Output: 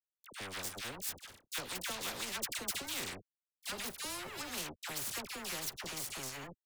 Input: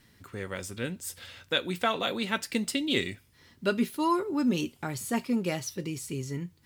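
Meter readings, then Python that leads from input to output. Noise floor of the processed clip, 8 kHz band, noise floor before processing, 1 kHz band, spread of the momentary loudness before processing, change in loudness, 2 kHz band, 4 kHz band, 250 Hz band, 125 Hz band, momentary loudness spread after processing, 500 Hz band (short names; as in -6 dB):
under -85 dBFS, 0.0 dB, -62 dBFS, -12.5 dB, 10 LU, -9.0 dB, -8.0 dB, -6.0 dB, -21.0 dB, -16.0 dB, 6 LU, -15.5 dB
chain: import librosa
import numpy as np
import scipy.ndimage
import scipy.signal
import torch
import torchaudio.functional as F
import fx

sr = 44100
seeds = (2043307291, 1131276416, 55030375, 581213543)

y = np.sign(x) * np.maximum(np.abs(x) - 10.0 ** (-41.0 / 20.0), 0.0)
y = fx.dispersion(y, sr, late='lows', ms=70.0, hz=1100.0)
y = fx.spectral_comp(y, sr, ratio=4.0)
y = y * 10.0 ** (-6.5 / 20.0)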